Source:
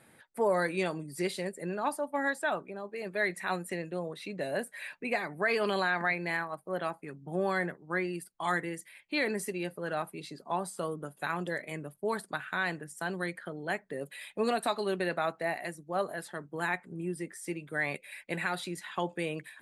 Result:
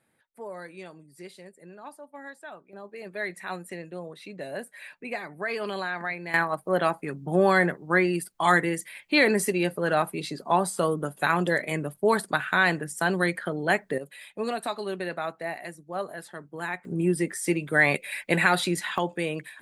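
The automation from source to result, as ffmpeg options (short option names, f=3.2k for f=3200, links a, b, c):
-af "asetnsamples=n=441:p=0,asendcmd='2.73 volume volume -2dB;6.34 volume volume 10dB;13.98 volume volume -0.5dB;16.85 volume volume 11.5dB;18.98 volume volume 5dB',volume=-11.5dB"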